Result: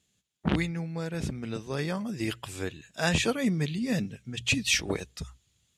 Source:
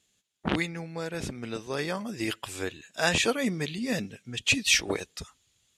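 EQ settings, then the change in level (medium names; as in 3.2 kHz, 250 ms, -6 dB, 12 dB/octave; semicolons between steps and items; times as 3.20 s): peaking EQ 65 Hz +12 dB 0.34 oct; peaking EQ 140 Hz +9.5 dB 1.5 oct; hum notches 60/120 Hz; -3.0 dB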